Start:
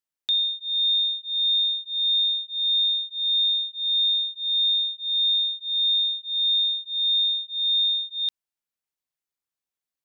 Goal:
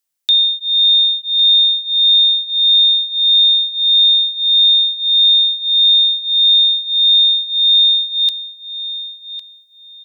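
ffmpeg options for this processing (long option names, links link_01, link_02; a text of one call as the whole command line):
ffmpeg -i in.wav -filter_complex "[0:a]highshelf=frequency=3400:gain=10.5,asplit=2[link_01][link_02];[link_02]adelay=1105,lowpass=frequency=3300:poles=1,volume=-10.5dB,asplit=2[link_03][link_04];[link_04]adelay=1105,lowpass=frequency=3300:poles=1,volume=0.29,asplit=2[link_05][link_06];[link_06]adelay=1105,lowpass=frequency=3300:poles=1,volume=0.29[link_07];[link_01][link_03][link_05][link_07]amix=inputs=4:normalize=0,volume=5dB" out.wav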